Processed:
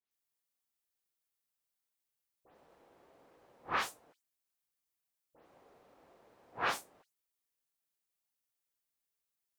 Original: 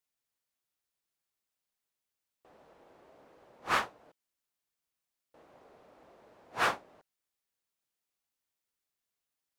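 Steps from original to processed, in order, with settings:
every frequency bin delayed by itself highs late, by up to 112 ms
high-shelf EQ 8,100 Hz +7 dB
level −4.5 dB

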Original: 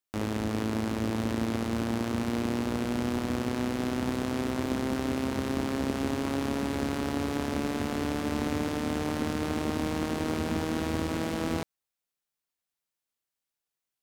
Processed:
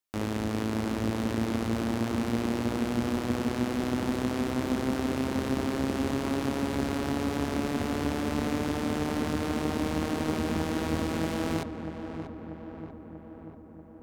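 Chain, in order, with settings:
feedback echo with a low-pass in the loop 638 ms, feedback 66%, low-pass 1,800 Hz, level −8.5 dB

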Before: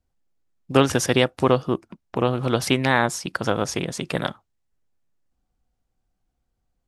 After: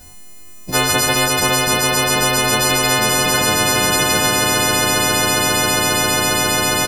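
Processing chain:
every partial snapped to a pitch grid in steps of 3 semitones
double-tracking delay 22 ms −5.5 dB
echo that builds up and dies away 135 ms, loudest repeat 8, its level −13.5 dB
every bin compressed towards the loudest bin 10 to 1

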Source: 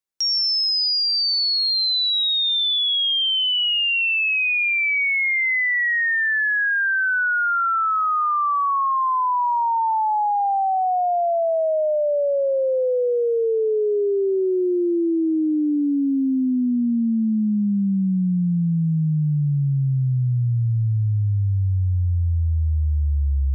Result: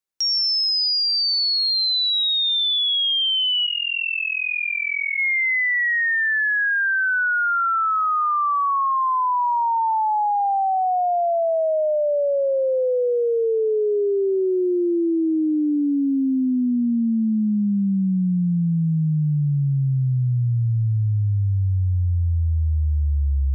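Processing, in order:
0:03.66–0:05.19: amplitude modulation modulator 42 Hz, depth 85%

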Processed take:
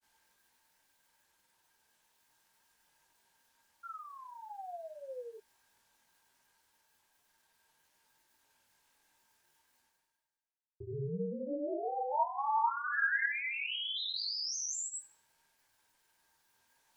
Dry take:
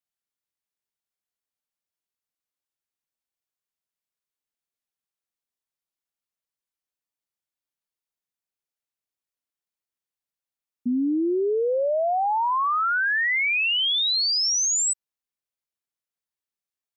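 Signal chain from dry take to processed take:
granular cloud, pitch spread up and down by 0 semitones
ring modulation 140 Hz
reversed playback
upward compression, threshold −35 dBFS
reversed playback
hollow resonant body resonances 910/1,600 Hz, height 15 dB, ringing for 45 ms
on a send: feedback echo with a high-pass in the loop 77 ms, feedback 33%, high-pass 200 Hz, level −17 dB
on the sum: sound drawn into the spectrogram fall, 0:03.83–0:05.38, 430–1,400 Hz −34 dBFS
micro pitch shift up and down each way 12 cents
level −7.5 dB

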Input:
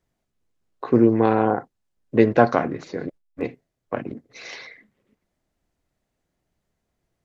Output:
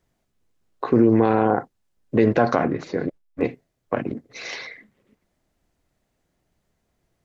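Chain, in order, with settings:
0:02.56–0:03.47: high-shelf EQ 4,100 Hz −5.5 dB
boost into a limiter +10 dB
level −5.5 dB

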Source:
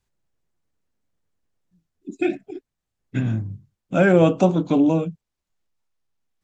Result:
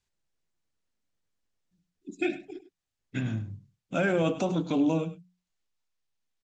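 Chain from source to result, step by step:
high-shelf EQ 2,100 Hz +11 dB
mains-hum notches 60/120/180 Hz
brickwall limiter −9 dBFS, peak gain reduction 6 dB
high-frequency loss of the air 50 metres
single-tap delay 101 ms −14.5 dB
level −7.5 dB

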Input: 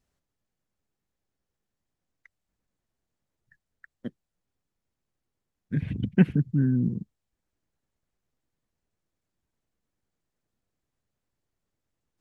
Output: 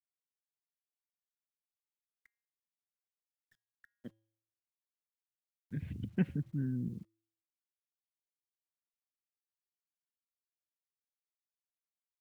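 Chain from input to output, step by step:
parametric band 82 Hz +8.5 dB 0.26 octaves
bit-depth reduction 10 bits, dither none
tuned comb filter 110 Hz, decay 0.67 s, harmonics odd, mix 40%
level −8 dB

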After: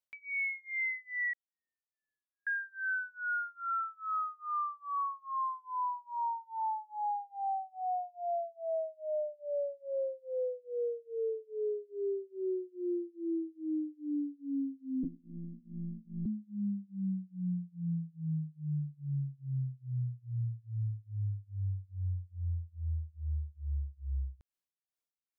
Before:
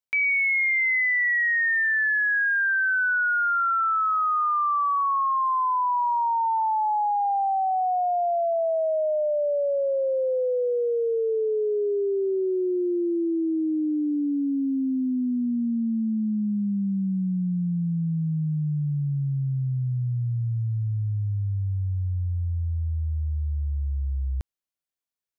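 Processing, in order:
0:01.33–0:02.47: Butterworth low-pass 650 Hz 48 dB per octave
brickwall limiter −26.5 dBFS, peak gain reduction 7 dB
amplitude tremolo 2.4 Hz, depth 98%
0:15.03–0:16.26: one-pitch LPC vocoder at 8 kHz 170 Hz
level −2.5 dB

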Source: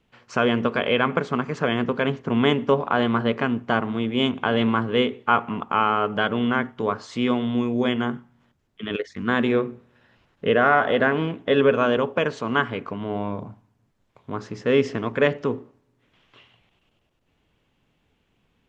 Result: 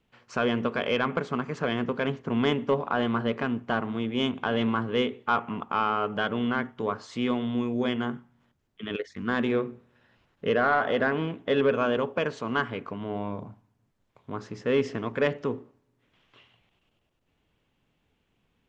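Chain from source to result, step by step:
soft clipping −7 dBFS, distortion −22 dB
level −4.5 dB

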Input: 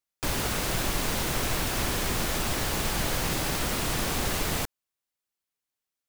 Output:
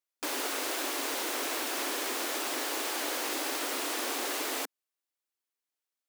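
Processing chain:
linear-phase brick-wall high-pass 250 Hz
level −3 dB

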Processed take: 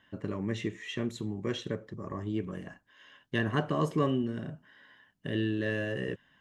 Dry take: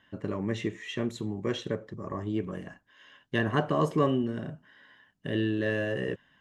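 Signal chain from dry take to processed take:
dynamic equaliser 710 Hz, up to −4 dB, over −41 dBFS, Q 0.78
level −1 dB

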